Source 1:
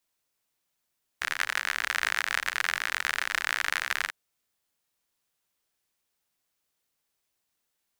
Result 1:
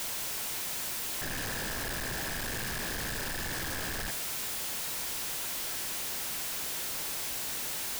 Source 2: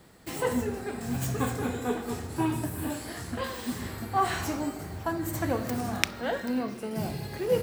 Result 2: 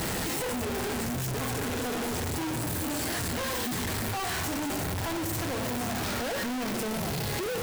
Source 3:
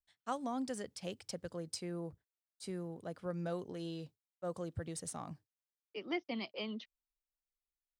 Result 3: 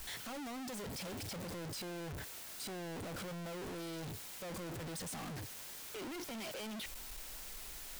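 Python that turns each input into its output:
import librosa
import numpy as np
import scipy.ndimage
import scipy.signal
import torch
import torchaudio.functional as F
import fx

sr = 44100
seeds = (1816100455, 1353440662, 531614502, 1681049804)

y = np.sign(x) * np.sqrt(np.mean(np.square(x)))
y = fx.notch(y, sr, hz=1200.0, q=26.0)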